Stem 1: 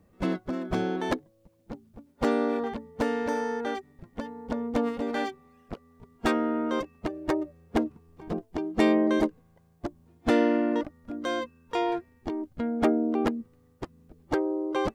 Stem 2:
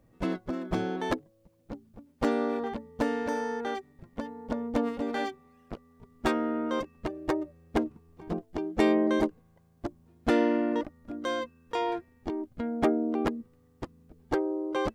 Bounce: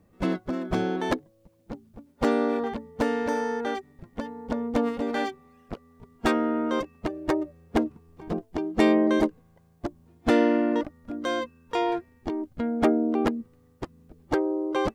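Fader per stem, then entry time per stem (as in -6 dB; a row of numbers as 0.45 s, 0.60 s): 0.0 dB, -10.5 dB; 0.00 s, 0.00 s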